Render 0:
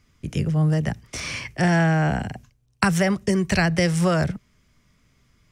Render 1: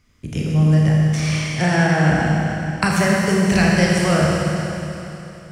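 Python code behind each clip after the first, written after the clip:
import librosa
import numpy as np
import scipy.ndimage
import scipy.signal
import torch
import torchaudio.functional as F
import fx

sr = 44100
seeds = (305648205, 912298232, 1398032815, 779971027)

y = fx.rev_schroeder(x, sr, rt60_s=3.2, comb_ms=26, drr_db=-3.5)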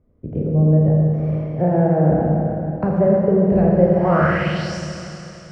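y = fx.filter_sweep_lowpass(x, sr, from_hz=540.0, to_hz=6000.0, start_s=3.92, end_s=4.76, q=2.7)
y = y * librosa.db_to_amplitude(-1.0)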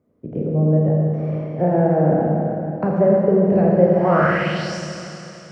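y = scipy.signal.sosfilt(scipy.signal.butter(2, 170.0, 'highpass', fs=sr, output='sos'), x)
y = y * librosa.db_to_amplitude(1.0)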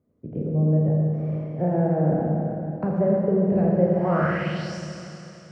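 y = fx.low_shelf(x, sr, hz=200.0, db=8.0)
y = y * librosa.db_to_amplitude(-8.0)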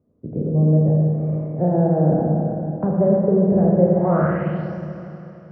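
y = scipy.signal.sosfilt(scipy.signal.butter(2, 1100.0, 'lowpass', fs=sr, output='sos'), x)
y = y * librosa.db_to_amplitude(4.5)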